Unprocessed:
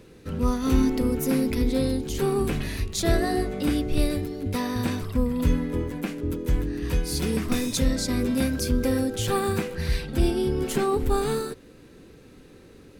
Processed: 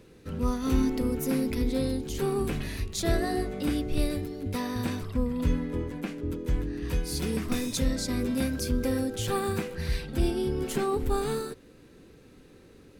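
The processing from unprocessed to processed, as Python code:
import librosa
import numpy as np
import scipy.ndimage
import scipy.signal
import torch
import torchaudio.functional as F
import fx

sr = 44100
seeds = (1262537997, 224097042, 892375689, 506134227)

y = fx.high_shelf(x, sr, hz=11000.0, db=-10.0, at=(5.03, 6.89))
y = F.gain(torch.from_numpy(y), -4.0).numpy()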